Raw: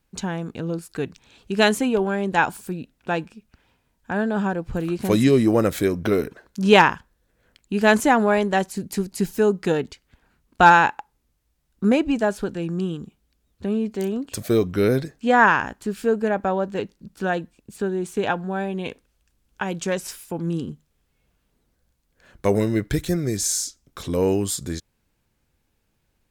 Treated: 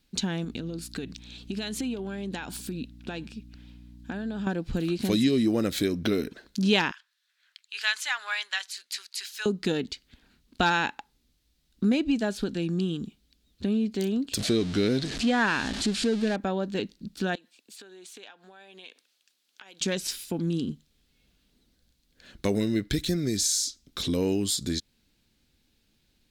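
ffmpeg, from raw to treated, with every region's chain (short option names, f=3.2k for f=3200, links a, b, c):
-filter_complex "[0:a]asettb=1/sr,asplit=3[a][b][c];[a]atrim=end=0.444[d];[b]atrim=start=0.44:end=4.47,asetpts=PTS-STARTPTS,afade=t=in:d=0.004:c=qsin,afade=t=out:st=4.026:d=0.004:c=qsin,acompressor=threshold=-30dB:ratio=12:attack=3.2:release=140:knee=1:detection=peak,aeval=exprs='val(0)+0.00447*(sin(2*PI*60*n/s)+sin(2*PI*2*60*n/s)/2+sin(2*PI*3*60*n/s)/3+sin(2*PI*4*60*n/s)/4+sin(2*PI*5*60*n/s)/5)':c=same[e];[c]atrim=start=4.466[f];[d][e]acrossfade=d=0.004:c1=hsin:c2=qsin[g];[g][f]acrossfade=d=0.004:c1=qsin:c2=hsin,asettb=1/sr,asplit=3[h][i][j];[h]atrim=end=6.914[k];[i]atrim=start=6.91:end=9.46,asetpts=PTS-STARTPTS,afade=t=in:d=0.004:c=qsin,afade=t=out:st=2.546:d=0.004:c=qsin,highpass=f=1.2k:w=0.5412,highpass=f=1.2k:w=1.3066,highshelf=f=7.3k:g=-8.5[l];[j]atrim=start=9.456[m];[k][l]acrossfade=d=0.004:c1=hsin:c2=qsin[n];[n][m]acrossfade=d=0.004:c1=qsin:c2=hsin,asettb=1/sr,asplit=3[o][p][q];[o]atrim=end=14.394[r];[p]atrim=start=14.39:end=16.36,asetpts=PTS-STARTPTS,afade=t=in:d=0.004:c=qsin,afade=t=out:st=1.966:d=0.004:c=qsin,aeval=exprs='val(0)+0.5*0.0398*sgn(val(0))':c=same,lowpass=f=9.3k:w=0.5412,lowpass=f=9.3k:w=1.3066[s];[q]atrim=start=16.356[t];[r][s]acrossfade=d=0.004:c1=hsin:c2=qsin[u];[u][t]acrossfade=d=0.004:c1=qsin:c2=hsin,asettb=1/sr,asplit=3[v][w][x];[v]atrim=end=17.354[y];[w]atrim=start=17.35:end=19.81,asetpts=PTS-STARTPTS,afade=t=in:d=0.004:c=qsin,afade=t=out:st=2.456:d=0.004:c=qsin,highpass=690,acompressor=threshold=-47dB:ratio=5:attack=3.2:release=140:knee=1:detection=peak[z];[x]atrim=start=19.806[aa];[y][z]acrossfade=d=0.004:c1=hsin:c2=qsin[ab];[ab][aa]acrossfade=d=0.004:c1=qsin:c2=hsin,equalizer=f=125:t=o:w=1:g=-3,equalizer=f=250:t=o:w=1:g=6,equalizer=f=500:t=o:w=1:g=-3,equalizer=f=1k:t=o:w=1:g=-6,equalizer=f=4k:t=o:w=1:g=11,acompressor=threshold=-27dB:ratio=2"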